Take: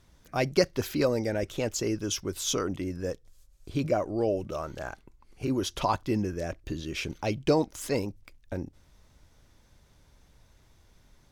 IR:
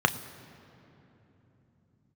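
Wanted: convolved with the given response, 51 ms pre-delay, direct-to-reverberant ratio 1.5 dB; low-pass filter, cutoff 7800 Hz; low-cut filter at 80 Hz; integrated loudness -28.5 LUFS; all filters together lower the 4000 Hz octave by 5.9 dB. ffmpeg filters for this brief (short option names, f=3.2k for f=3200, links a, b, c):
-filter_complex "[0:a]highpass=80,lowpass=7.8k,equalizer=f=4k:t=o:g=-7.5,asplit=2[a][b];[1:a]atrim=start_sample=2205,adelay=51[c];[b][c]afir=irnorm=-1:irlink=0,volume=-15.5dB[d];[a][d]amix=inputs=2:normalize=0"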